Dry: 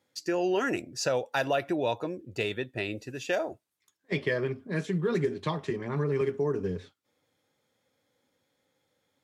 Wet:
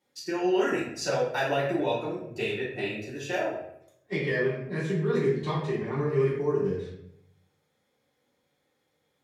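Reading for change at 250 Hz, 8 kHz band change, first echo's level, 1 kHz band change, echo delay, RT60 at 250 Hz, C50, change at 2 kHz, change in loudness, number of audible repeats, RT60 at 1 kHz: +1.5 dB, can't be measured, no echo audible, +1.5 dB, no echo audible, 0.85 s, 2.5 dB, +1.5 dB, +2.0 dB, no echo audible, 0.65 s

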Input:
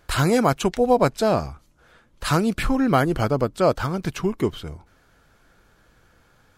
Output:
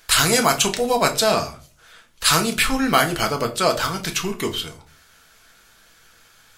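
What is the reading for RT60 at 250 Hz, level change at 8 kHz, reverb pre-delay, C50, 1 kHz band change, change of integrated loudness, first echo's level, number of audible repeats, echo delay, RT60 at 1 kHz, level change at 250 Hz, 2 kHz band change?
0.50 s, +14.5 dB, 4 ms, 14.5 dB, +2.5 dB, +2.5 dB, no echo audible, no echo audible, no echo audible, 0.35 s, −3.0 dB, +7.5 dB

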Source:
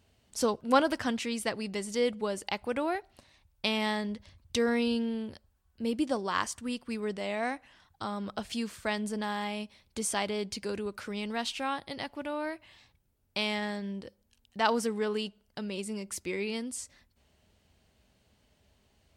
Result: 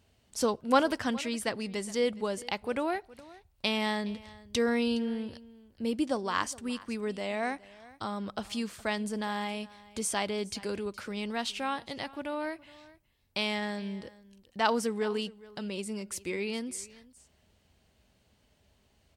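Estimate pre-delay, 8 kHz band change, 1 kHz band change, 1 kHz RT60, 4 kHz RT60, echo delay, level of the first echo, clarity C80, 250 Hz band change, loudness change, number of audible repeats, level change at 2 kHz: no reverb audible, 0.0 dB, 0.0 dB, no reverb audible, no reverb audible, 416 ms, −20.5 dB, no reverb audible, 0.0 dB, 0.0 dB, 1, 0.0 dB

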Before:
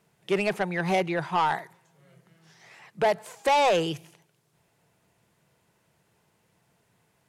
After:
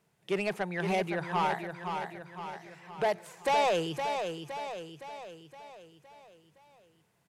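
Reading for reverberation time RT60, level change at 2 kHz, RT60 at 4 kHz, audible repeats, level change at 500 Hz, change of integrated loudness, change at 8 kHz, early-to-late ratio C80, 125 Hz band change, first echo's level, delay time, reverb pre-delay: no reverb audible, −4.5 dB, no reverb audible, 6, −4.5 dB, −6.5 dB, −4.5 dB, no reverb audible, −4.0 dB, −6.5 dB, 515 ms, no reverb audible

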